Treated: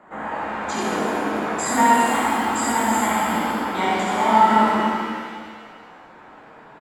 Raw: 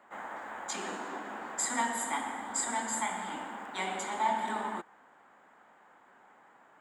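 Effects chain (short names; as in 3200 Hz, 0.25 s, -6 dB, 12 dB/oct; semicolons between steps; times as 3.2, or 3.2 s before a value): tilt -3 dB/oct; echo 74 ms -4 dB; shimmer reverb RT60 1.7 s, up +7 st, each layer -8 dB, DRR -3 dB; gain +8 dB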